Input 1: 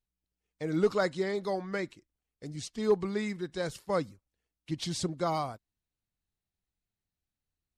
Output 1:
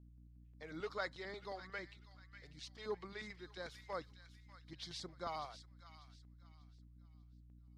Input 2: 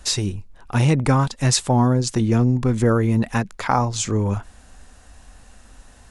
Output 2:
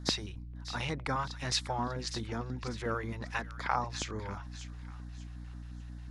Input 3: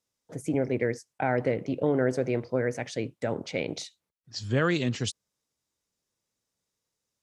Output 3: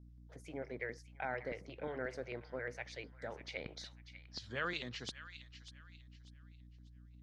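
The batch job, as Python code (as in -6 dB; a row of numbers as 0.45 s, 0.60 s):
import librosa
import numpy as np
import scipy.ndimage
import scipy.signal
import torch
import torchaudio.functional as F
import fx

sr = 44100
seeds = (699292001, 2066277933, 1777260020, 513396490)

y = librosa.effects.preemphasis(x, coef=0.97, zi=[0.0])
y = fx.add_hum(y, sr, base_hz=60, snr_db=16)
y = fx.filter_lfo_notch(y, sr, shape='square', hz=5.6, low_hz=240.0, high_hz=2700.0, q=1.1)
y = fx.air_absorb(y, sr, metres=320.0)
y = fx.echo_wet_highpass(y, sr, ms=594, feedback_pct=31, hz=1500.0, wet_db=-11.0)
y = y * 10.0 ** (8.0 / 20.0)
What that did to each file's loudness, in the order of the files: -15.0 LU, -17.0 LU, -15.0 LU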